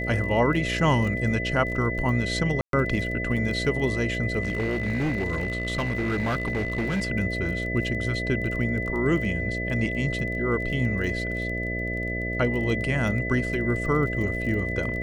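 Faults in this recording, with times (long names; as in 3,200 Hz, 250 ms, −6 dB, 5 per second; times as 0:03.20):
mains buzz 60 Hz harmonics 11 −31 dBFS
surface crackle 24 per second −33 dBFS
whistle 2,000 Hz −30 dBFS
0:02.61–0:02.73: drop-out 122 ms
0:04.42–0:07.10: clipping −22 dBFS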